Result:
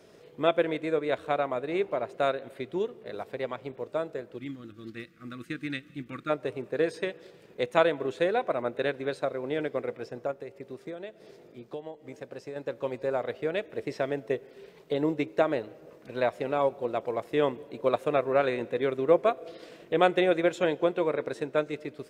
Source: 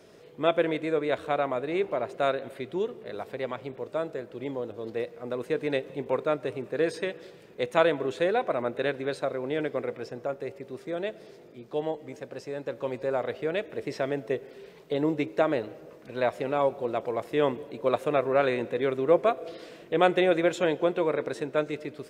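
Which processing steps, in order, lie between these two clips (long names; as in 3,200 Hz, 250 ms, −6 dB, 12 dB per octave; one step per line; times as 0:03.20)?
0:04.38–0:06.30: gain on a spectral selection 350–1,100 Hz −21 dB
0:10.31–0:12.56: downward compressor 6 to 1, threshold −35 dBFS, peak gain reduction 10.5 dB
transient designer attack +2 dB, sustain −3 dB
level −1.5 dB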